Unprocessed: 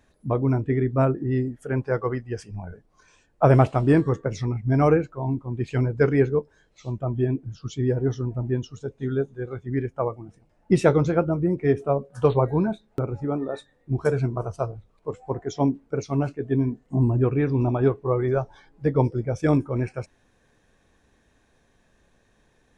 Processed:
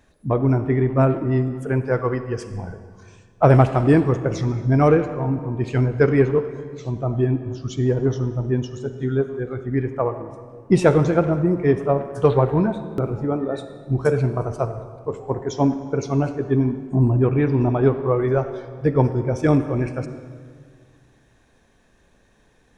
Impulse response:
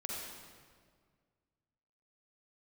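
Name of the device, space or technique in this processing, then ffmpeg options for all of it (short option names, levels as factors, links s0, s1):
saturated reverb return: -filter_complex "[0:a]asplit=2[s0][s1];[1:a]atrim=start_sample=2205[s2];[s1][s2]afir=irnorm=-1:irlink=0,asoftclip=type=tanh:threshold=0.133,volume=0.473[s3];[s0][s3]amix=inputs=2:normalize=0,volume=1.19"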